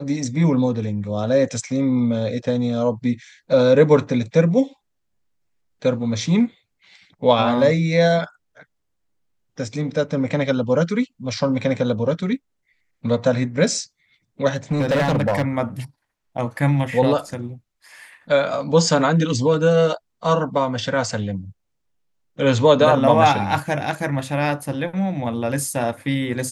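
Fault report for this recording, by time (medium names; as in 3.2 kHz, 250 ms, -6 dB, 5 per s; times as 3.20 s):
14.47–15.42 s: clipped -15 dBFS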